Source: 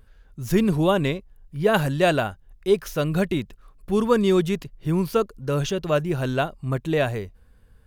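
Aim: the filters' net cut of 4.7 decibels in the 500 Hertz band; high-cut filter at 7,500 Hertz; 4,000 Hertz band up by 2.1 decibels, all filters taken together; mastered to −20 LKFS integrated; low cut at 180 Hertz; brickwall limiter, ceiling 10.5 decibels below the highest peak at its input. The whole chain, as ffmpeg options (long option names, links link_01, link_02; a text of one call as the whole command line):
ffmpeg -i in.wav -af "highpass=180,lowpass=7500,equalizer=frequency=500:width_type=o:gain=-6,equalizer=frequency=4000:width_type=o:gain=3,volume=8.5dB,alimiter=limit=-8dB:level=0:latency=1" out.wav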